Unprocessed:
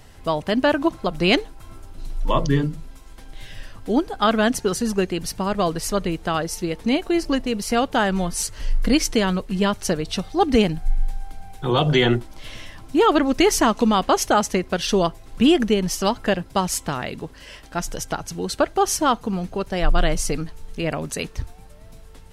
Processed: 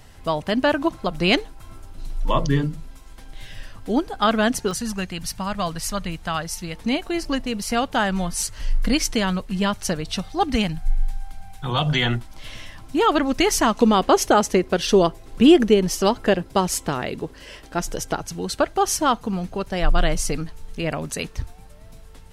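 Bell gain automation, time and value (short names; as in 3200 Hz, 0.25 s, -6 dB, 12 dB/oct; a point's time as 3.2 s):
bell 390 Hz 1 oct
-2.5 dB
from 4.71 s -14.5 dB
from 6.75 s -6 dB
from 10.5 s -12.5 dB
from 12.34 s -4 dB
from 13.81 s +5 dB
from 18.22 s -2 dB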